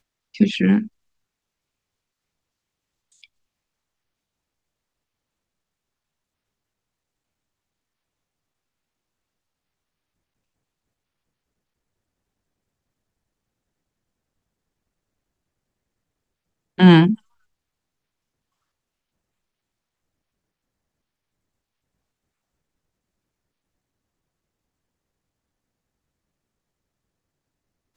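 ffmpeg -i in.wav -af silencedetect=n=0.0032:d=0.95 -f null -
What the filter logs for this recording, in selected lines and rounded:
silence_start: 0.88
silence_end: 3.12 | silence_duration: 2.24
silence_start: 3.26
silence_end: 16.78 | silence_duration: 13.52
silence_start: 17.19
silence_end: 27.97 | silence_duration: 10.77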